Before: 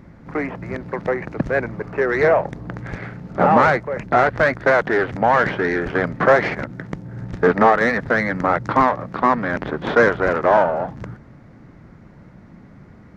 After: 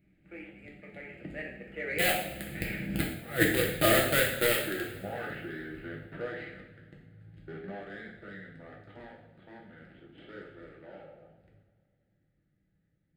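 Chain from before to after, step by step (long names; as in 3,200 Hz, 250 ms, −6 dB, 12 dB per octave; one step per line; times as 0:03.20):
source passing by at 0:03.12, 37 m/s, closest 2.1 metres
in parallel at −3 dB: bit reduction 6 bits
on the sum: compressor whose output falls as the input rises −29 dBFS, ratio −0.5
high-shelf EQ 2,800 Hz +11.5 dB
phaser with its sweep stopped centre 2,500 Hz, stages 4
coupled-rooms reverb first 0.67 s, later 2.4 s, from −18 dB, DRR −2.5 dB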